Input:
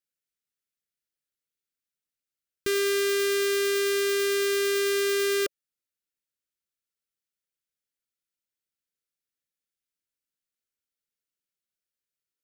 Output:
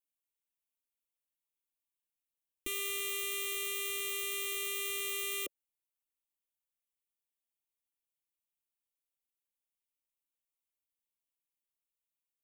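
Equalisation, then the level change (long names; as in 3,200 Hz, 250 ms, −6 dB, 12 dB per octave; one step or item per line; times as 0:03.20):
phaser with its sweep stopped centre 410 Hz, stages 6
phaser with its sweep stopped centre 1,000 Hz, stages 8
0.0 dB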